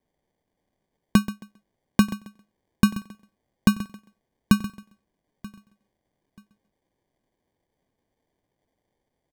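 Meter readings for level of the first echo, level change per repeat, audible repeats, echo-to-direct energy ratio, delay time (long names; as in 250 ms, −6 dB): −15.0 dB, repeats not evenly spaced, 3, −14.0 dB, 131 ms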